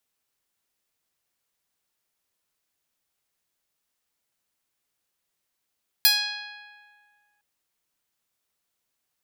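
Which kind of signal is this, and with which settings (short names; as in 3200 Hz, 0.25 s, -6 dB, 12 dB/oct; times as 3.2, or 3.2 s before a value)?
plucked string G#5, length 1.36 s, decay 2.01 s, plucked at 0.09, bright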